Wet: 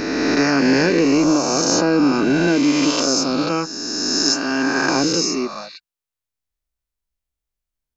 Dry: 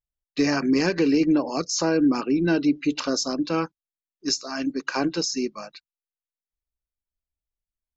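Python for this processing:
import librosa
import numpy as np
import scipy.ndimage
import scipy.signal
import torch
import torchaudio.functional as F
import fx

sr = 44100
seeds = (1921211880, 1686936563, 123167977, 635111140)

y = fx.spec_swells(x, sr, rise_s=2.48)
y = y * 10.0 ** (2.0 / 20.0)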